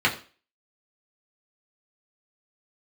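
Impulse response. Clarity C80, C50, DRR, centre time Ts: 16.5 dB, 12.5 dB, -4.0 dB, 15 ms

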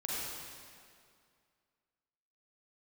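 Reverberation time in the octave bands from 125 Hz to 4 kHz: 2.2 s, 2.3 s, 2.2 s, 2.2 s, 2.0 s, 1.9 s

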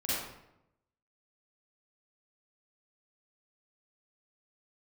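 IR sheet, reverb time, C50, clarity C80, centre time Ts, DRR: 0.85 s, -4.5 dB, 0.5 dB, 88 ms, -10.5 dB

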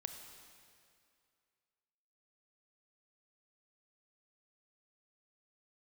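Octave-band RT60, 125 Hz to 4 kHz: 2.2 s, 2.3 s, 2.4 s, 2.4 s, 2.3 s, 2.1 s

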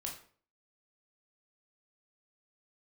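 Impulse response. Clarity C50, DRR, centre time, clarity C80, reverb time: 7.5 dB, -0.5 dB, 25 ms, 12.0 dB, 0.50 s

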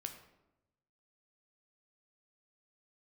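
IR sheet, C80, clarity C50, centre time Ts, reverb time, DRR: 11.0 dB, 9.0 dB, 16 ms, 0.95 s, 5.0 dB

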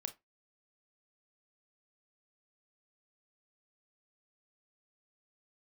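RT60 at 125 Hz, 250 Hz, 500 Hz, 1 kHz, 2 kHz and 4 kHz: 0.20 s, 0.20 s, 0.20 s, 0.20 s, 0.20 s, 0.15 s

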